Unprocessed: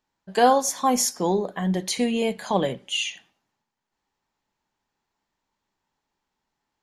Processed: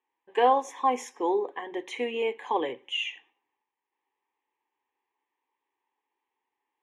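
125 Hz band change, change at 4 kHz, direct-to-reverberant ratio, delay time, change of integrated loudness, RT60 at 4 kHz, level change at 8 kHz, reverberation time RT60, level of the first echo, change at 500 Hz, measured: below −25 dB, −6.5 dB, no reverb audible, no echo audible, −5.0 dB, no reverb audible, −20.0 dB, no reverb audible, no echo audible, −3.5 dB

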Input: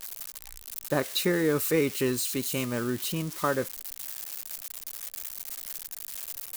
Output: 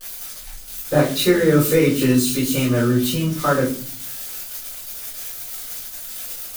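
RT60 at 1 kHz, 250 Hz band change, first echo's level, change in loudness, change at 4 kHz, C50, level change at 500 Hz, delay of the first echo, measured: 0.35 s, +12.0 dB, no echo audible, +10.0 dB, +8.0 dB, 8.0 dB, +9.5 dB, no echo audible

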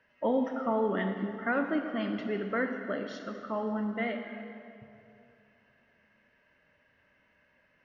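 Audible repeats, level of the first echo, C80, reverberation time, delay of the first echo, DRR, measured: no echo audible, no echo audible, 7.0 dB, 2.7 s, no echo audible, 5.5 dB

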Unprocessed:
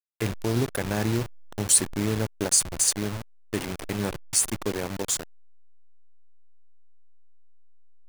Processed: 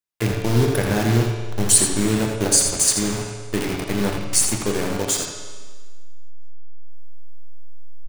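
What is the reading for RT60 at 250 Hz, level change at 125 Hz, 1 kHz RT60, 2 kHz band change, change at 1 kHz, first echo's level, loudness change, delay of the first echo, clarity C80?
1.5 s, +8.0 dB, 1.5 s, +6.5 dB, +7.0 dB, −7.5 dB, +5.5 dB, 83 ms, 3.5 dB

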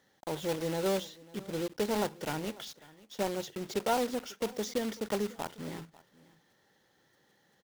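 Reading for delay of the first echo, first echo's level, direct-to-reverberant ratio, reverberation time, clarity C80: 545 ms, −21.5 dB, no reverb audible, no reverb audible, no reverb audible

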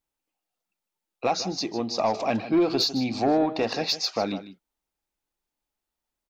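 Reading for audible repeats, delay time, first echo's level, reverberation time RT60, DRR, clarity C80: 1, 153 ms, −13.5 dB, no reverb audible, no reverb audible, no reverb audible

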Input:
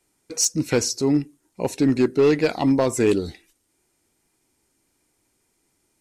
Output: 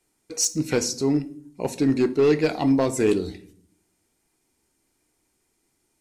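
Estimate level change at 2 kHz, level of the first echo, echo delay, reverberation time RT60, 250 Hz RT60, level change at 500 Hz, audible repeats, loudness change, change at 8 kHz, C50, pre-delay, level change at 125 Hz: −2.0 dB, no echo audible, no echo audible, 0.55 s, 0.85 s, −1.5 dB, no echo audible, −1.5 dB, −2.0 dB, 17.0 dB, 3 ms, −2.0 dB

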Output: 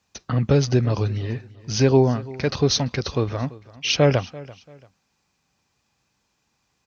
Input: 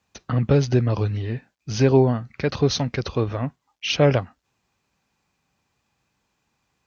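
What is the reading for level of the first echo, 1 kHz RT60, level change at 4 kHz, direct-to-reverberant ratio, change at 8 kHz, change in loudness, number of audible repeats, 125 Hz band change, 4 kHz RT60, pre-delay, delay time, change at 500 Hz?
−20.0 dB, no reverb audible, +3.0 dB, no reverb audible, can't be measured, +0.5 dB, 2, 0.0 dB, no reverb audible, no reverb audible, 339 ms, 0.0 dB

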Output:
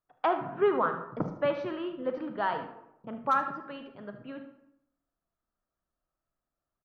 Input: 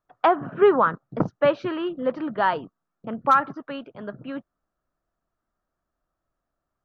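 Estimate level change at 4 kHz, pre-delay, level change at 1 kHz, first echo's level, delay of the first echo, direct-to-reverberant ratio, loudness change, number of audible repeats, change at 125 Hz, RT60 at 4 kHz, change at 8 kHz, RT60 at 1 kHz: −7.5 dB, 34 ms, −7.5 dB, −13.5 dB, 75 ms, 6.5 dB, −8.0 dB, 1, −7.5 dB, 0.50 s, can't be measured, 0.80 s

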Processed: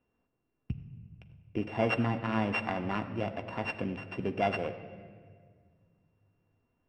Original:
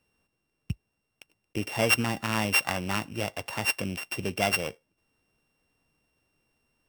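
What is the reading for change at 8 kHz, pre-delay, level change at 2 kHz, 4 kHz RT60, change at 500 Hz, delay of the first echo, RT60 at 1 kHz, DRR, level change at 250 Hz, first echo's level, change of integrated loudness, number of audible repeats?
below −25 dB, 3 ms, −8.0 dB, 1.3 s, −1.0 dB, no echo audible, 1.5 s, 6.5 dB, 0.0 dB, no echo audible, −5.5 dB, no echo audible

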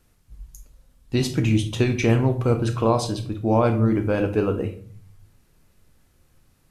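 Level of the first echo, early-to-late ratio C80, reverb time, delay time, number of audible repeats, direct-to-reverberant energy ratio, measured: no echo audible, 16.0 dB, 0.45 s, no echo audible, no echo audible, 7.5 dB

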